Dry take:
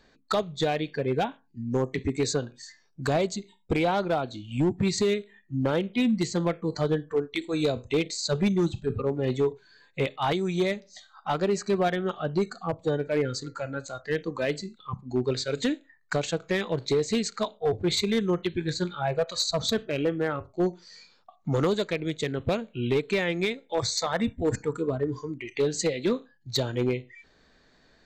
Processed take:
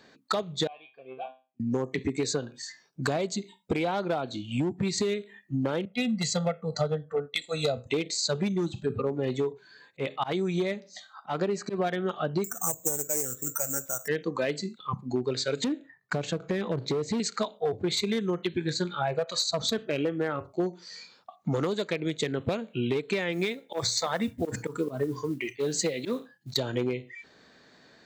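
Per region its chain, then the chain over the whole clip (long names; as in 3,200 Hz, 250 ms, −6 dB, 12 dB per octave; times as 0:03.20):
0:00.67–0:01.60: formant filter a + high shelf with overshoot 4,700 Hz −12 dB, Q 3 + tuned comb filter 130 Hz, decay 0.3 s, mix 90%
0:05.85–0:07.87: parametric band 1,700 Hz −3 dB 0.33 octaves + comb filter 1.5 ms, depth 92% + multiband upward and downward expander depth 100%
0:09.51–0:11.87: high-shelf EQ 3,800 Hz −5 dB + volume swells 157 ms
0:12.44–0:14.08: low-pass filter 2,200 Hz + bad sample-rate conversion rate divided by 6×, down filtered, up zero stuff + highs frequency-modulated by the lows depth 0.14 ms
0:15.64–0:17.20: spectral tilt −2.5 dB per octave + downward compressor 1.5 to 1, threshold −33 dBFS + hard clipping −24 dBFS
0:23.32–0:26.56: mains-hum notches 60/120 Hz + volume swells 143 ms + noise that follows the level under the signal 30 dB
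whole clip: high-pass filter 130 Hz; downward compressor, threshold −30 dBFS; level +5 dB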